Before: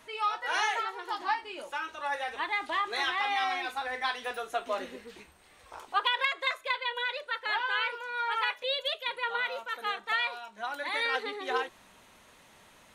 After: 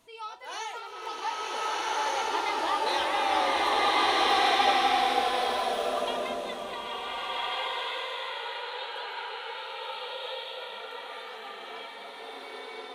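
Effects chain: Doppler pass-by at 2.82, 12 m/s, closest 15 m; bell 1700 Hz -10.5 dB 1.1 oct; bloom reverb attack 1.54 s, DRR -9 dB; gain +3 dB

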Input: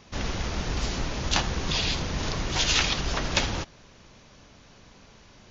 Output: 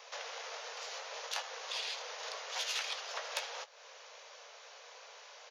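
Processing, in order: tracing distortion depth 0.036 ms; compressor 3:1, threshold -41 dBFS, peak gain reduction 16.5 dB; steep high-pass 450 Hz 96 dB/oct; doubler 19 ms -11.5 dB; gain +2 dB

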